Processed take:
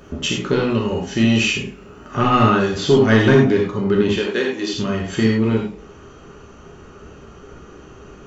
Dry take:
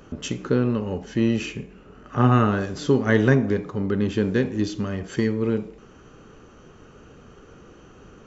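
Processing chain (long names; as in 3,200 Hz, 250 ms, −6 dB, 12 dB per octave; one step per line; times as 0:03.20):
0:00.53–0:02.17: high-shelf EQ 5,600 Hz +9.5 dB
0:04.16–0:04.73: high-pass filter 420 Hz 12 dB per octave
dynamic equaliser 3,100 Hz, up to +8 dB, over −48 dBFS, Q 1.4
soft clipping −8.5 dBFS, distortion −19 dB
reverb whose tail is shaped and stops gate 120 ms flat, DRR −1.5 dB
level +3 dB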